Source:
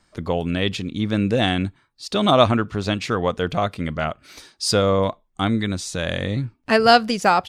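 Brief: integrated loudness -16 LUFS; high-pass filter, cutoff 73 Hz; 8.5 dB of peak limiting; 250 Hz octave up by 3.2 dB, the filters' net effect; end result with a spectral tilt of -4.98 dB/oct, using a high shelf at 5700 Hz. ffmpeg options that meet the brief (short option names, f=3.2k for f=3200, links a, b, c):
-af "highpass=73,equalizer=f=250:t=o:g=4,highshelf=f=5.7k:g=5,volume=5.5dB,alimiter=limit=-3.5dB:level=0:latency=1"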